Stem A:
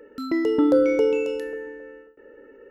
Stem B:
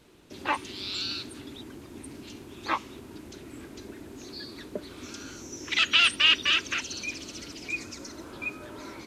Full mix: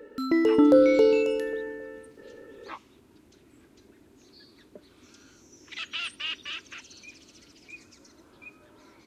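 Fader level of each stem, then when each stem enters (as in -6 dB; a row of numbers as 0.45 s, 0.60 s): +0.5 dB, -13.0 dB; 0.00 s, 0.00 s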